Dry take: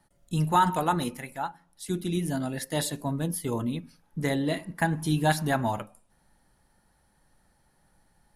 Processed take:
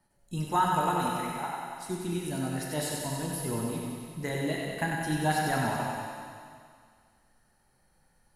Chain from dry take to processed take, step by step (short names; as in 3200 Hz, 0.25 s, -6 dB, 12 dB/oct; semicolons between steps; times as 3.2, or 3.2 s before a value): notch 3500 Hz, Q 8.3; thinning echo 94 ms, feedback 74%, high-pass 500 Hz, level -4.5 dB; plate-style reverb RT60 2 s, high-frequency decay 0.9×, DRR 0.5 dB; gain -5.5 dB